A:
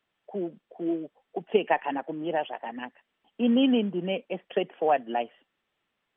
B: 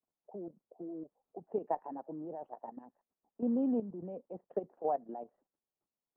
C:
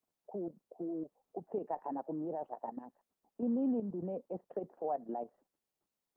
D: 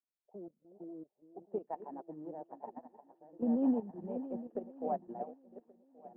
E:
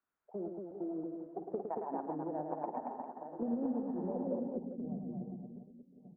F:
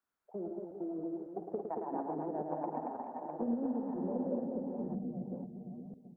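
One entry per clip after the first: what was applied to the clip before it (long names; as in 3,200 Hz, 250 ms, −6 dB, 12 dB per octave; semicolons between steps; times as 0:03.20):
low-pass filter 1,000 Hz 24 dB per octave; output level in coarse steps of 12 dB; level −6 dB
brickwall limiter −31 dBFS, peak gain reduction 10.5 dB; level +4 dB
feedback delay that plays each chunk backwards 564 ms, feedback 63%, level −5.5 dB; delay with a high-pass on its return 390 ms, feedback 79%, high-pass 1,500 Hz, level −12.5 dB; expander for the loud parts 2.5 to 1, over −45 dBFS; level +4.5 dB
low-pass filter sweep 1,400 Hz → 150 Hz, 0:04.08–0:04.65; downward compressor 8 to 1, threshold −43 dBFS, peak gain reduction 17.5 dB; multi-tap delay 51/109/229/401 ms −11.5/−6/−4/−9 dB; level +7.5 dB
delay that plays each chunk backwards 495 ms, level −5.5 dB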